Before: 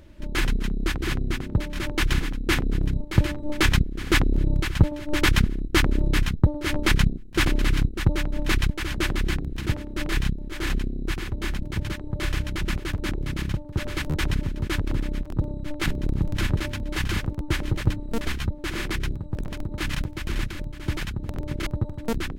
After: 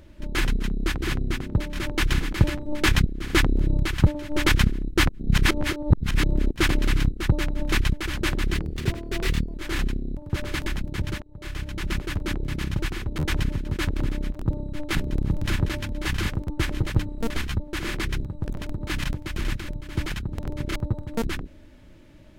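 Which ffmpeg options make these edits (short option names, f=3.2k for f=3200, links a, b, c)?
-filter_complex "[0:a]asplit=11[a][b][c][d][e][f][g][h][i][j][k];[a]atrim=end=2.332[l];[b]atrim=start=3.098:end=5.862[m];[c]atrim=start=5.858:end=7.282,asetpts=PTS-STARTPTS,areverse[n];[d]atrim=start=7.278:end=9.324[o];[e]atrim=start=9.32:end=10.45,asetpts=PTS-STARTPTS,asetrate=50274,aresample=44100,atrim=end_sample=43713,asetpts=PTS-STARTPTS[p];[f]atrim=start=10.446:end=11.082[q];[g]atrim=start=13.598:end=14.092[r];[h]atrim=start=11.438:end=12,asetpts=PTS-STARTPTS,afade=t=out:st=0.558:d=0.004:c=hsin:silence=0.0630957[s];[i]atrim=start=12:end=13.602,asetpts=PTS-STARTPTS,afade=t=in:d=0.76:silence=0.0630957[t];[j]atrim=start=11.078:end=11.442[u];[k]atrim=start=14.088[v];[l][m]acrossfade=d=0.004:c1=hsin:c2=hsin[w];[w][n]acrossfade=d=0.004:c1=hsin:c2=hsin[x];[x][o]acrossfade=d=0.004:c1=hsin:c2=hsin[y];[y][p]acrossfade=d=0.004:c1=hsin:c2=hsin[z];[z][q]acrossfade=d=0.004:c1=hsin:c2=hsin[aa];[aa][r]acrossfade=d=0.004:c1=hsin:c2=hsin[ab];[s][t]concat=n=2:v=0:a=1[ac];[ab][ac]acrossfade=d=0.004:c1=hsin:c2=hsin[ad];[ad][u]acrossfade=d=0.004:c1=hsin:c2=hsin[ae];[ae][v]acrossfade=d=0.004:c1=hsin:c2=hsin"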